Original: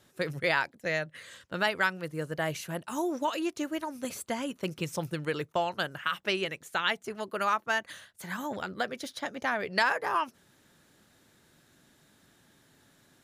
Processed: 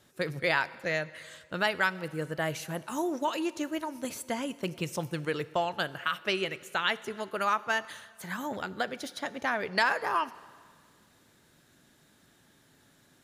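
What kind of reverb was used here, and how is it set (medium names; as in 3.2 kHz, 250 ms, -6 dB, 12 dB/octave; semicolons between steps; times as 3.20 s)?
plate-style reverb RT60 1.8 s, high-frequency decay 0.95×, DRR 16.5 dB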